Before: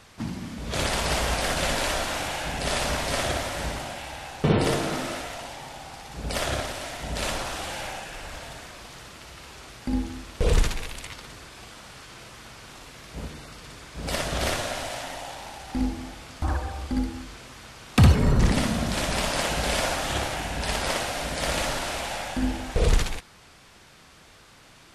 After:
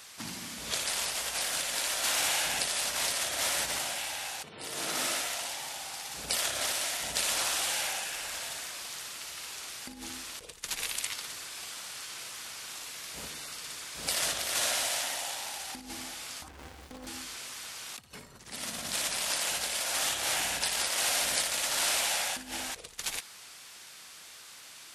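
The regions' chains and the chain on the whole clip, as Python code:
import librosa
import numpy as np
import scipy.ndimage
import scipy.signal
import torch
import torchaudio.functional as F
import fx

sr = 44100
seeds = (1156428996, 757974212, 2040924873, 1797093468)

y = fx.chain(x, sr, fx.high_shelf(hz=4000.0, db=-10.5),
    fx.running_max(window=65), at=(16.48, 17.07))
y = fx.over_compress(y, sr, threshold_db=-30.0, ratio=-1.0)
y = fx.tilt_eq(y, sr, slope=4.0)
y = F.gain(torch.from_numpy(y), -6.5).numpy()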